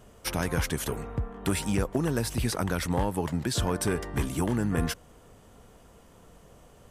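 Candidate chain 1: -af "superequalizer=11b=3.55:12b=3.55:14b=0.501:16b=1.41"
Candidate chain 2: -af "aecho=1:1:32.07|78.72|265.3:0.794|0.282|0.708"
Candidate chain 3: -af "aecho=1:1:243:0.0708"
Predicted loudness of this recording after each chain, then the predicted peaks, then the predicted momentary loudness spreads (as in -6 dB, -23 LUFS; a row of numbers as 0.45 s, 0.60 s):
-27.5 LUFS, -26.5 LUFS, -29.5 LUFS; -8.5 dBFS, -11.0 dBFS, -14.5 dBFS; 5 LU, 6 LU, 5 LU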